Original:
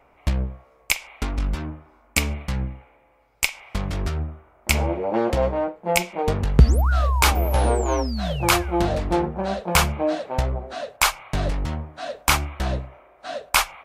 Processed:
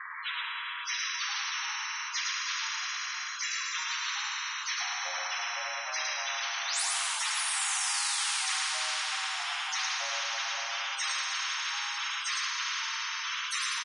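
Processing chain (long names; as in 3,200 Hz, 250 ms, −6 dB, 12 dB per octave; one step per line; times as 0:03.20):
partials spread apart or drawn together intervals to 91%
brickwall limiter −15.5 dBFS, peak gain reduction 11 dB
Butterworth high-pass 1,200 Hz 36 dB per octave
spectral peaks only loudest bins 32
single-tap delay 108 ms −4.5 dB
coupled-rooms reverb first 0.4 s, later 3.8 s, from −18 dB, DRR 1.5 dB
every bin compressed towards the loudest bin 10 to 1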